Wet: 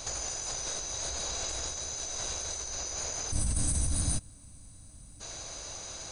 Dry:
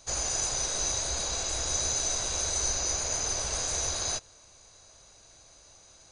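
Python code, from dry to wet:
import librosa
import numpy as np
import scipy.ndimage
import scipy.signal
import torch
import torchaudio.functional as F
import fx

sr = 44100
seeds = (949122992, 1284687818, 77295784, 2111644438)

y = fx.spec_box(x, sr, start_s=3.31, length_s=1.9, low_hz=320.0, high_hz=7700.0, gain_db=-21)
y = fx.over_compress(y, sr, threshold_db=-40.0, ratio=-1.0)
y = y * librosa.db_to_amplitude(6.0)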